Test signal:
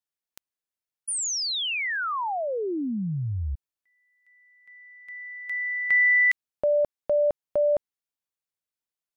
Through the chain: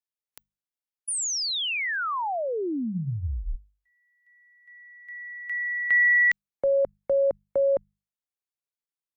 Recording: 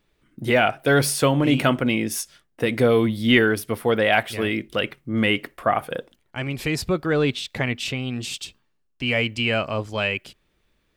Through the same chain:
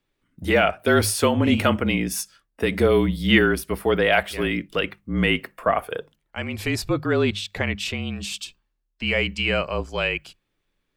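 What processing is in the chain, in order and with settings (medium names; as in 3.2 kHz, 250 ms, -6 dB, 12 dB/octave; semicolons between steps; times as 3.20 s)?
spectral noise reduction 7 dB; frequency shift -36 Hz; hum notches 50/100/150/200 Hz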